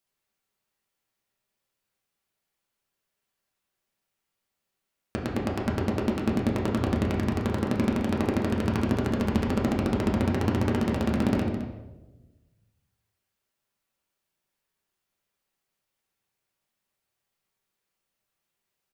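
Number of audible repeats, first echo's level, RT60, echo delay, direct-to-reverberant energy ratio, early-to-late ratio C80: 1, -12.5 dB, 1.1 s, 213 ms, -3.5 dB, 5.5 dB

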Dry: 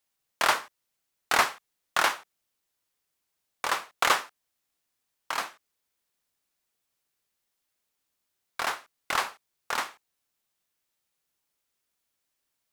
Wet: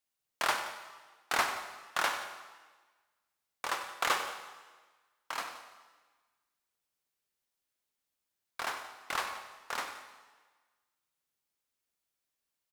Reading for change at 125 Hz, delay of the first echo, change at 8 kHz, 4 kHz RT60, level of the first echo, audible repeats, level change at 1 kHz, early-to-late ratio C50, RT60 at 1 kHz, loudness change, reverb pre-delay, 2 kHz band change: -6.0 dB, 95 ms, -6.0 dB, 1.3 s, -13.0 dB, 2, -6.0 dB, 7.0 dB, 1.4 s, -7.0 dB, 35 ms, -6.0 dB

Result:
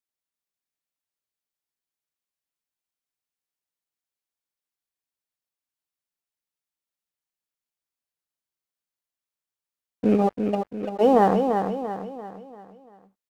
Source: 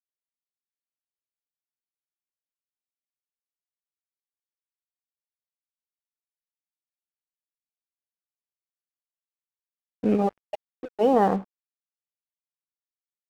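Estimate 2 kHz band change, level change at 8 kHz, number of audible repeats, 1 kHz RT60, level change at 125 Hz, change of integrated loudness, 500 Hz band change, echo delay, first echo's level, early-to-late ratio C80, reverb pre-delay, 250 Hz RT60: +3.5 dB, no reading, 5, no reverb, +3.5 dB, +1.5 dB, +3.5 dB, 342 ms, -6.0 dB, no reverb, no reverb, no reverb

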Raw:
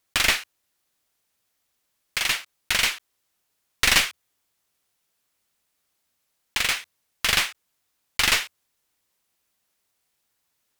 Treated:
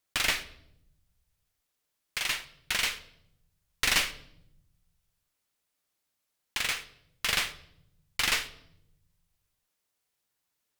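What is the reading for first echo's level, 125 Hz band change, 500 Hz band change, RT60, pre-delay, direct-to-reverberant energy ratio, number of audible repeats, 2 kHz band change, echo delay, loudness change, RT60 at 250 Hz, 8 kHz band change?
no echo, -6.5 dB, -6.0 dB, 0.75 s, 7 ms, 9.5 dB, no echo, -6.5 dB, no echo, -6.5 dB, 1.4 s, -7.0 dB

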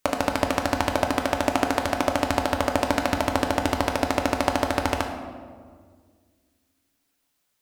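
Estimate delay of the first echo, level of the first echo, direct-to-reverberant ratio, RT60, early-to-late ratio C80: no echo, no echo, 3.0 dB, 1.9 s, 8.5 dB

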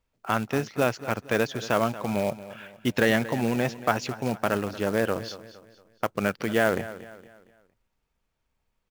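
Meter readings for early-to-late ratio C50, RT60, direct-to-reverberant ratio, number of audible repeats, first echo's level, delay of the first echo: no reverb, no reverb, no reverb, 3, -15.5 dB, 231 ms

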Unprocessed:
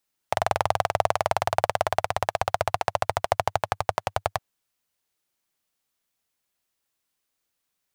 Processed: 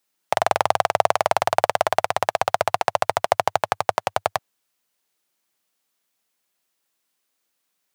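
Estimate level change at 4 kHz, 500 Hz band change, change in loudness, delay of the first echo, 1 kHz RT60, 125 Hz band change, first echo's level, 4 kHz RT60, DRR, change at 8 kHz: +4.5 dB, +4.5 dB, +4.5 dB, no echo, no reverb, -3.5 dB, no echo, no reverb, no reverb, +4.5 dB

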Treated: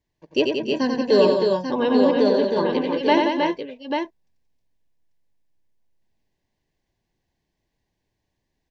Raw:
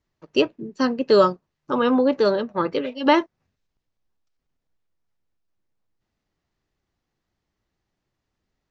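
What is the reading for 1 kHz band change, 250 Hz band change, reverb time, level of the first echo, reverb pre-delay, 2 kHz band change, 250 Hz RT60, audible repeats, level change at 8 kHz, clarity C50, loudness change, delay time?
-0.5 dB, +2.0 dB, no reverb, -4.5 dB, no reverb, +1.0 dB, no reverb, 4, no reading, no reverb, +0.5 dB, 90 ms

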